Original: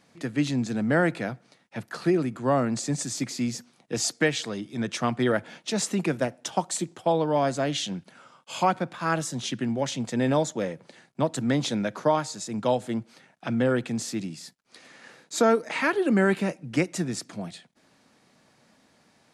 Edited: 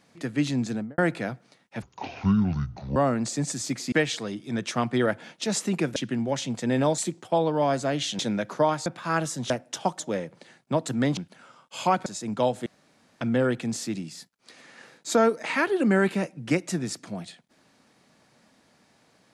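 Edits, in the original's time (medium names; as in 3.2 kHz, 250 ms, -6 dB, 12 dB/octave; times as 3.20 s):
0.69–0.98 s: studio fade out
1.82–2.47 s: speed 57%
3.43–4.18 s: delete
6.22–6.72 s: swap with 9.46–10.48 s
7.93–8.82 s: swap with 11.65–12.32 s
12.92–13.47 s: room tone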